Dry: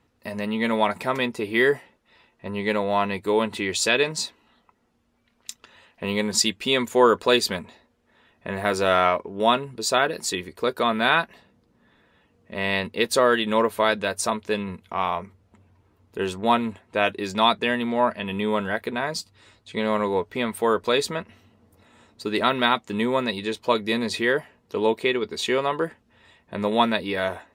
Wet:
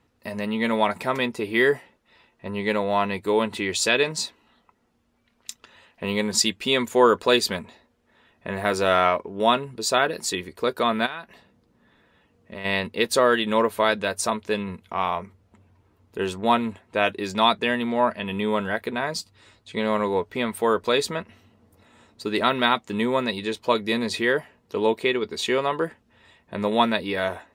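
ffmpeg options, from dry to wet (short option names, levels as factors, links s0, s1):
-filter_complex "[0:a]asplit=3[s0][s1][s2];[s0]afade=t=out:st=11.05:d=0.02[s3];[s1]acompressor=threshold=0.0251:ratio=4:attack=3.2:release=140:knee=1:detection=peak,afade=t=in:st=11.05:d=0.02,afade=t=out:st=12.64:d=0.02[s4];[s2]afade=t=in:st=12.64:d=0.02[s5];[s3][s4][s5]amix=inputs=3:normalize=0"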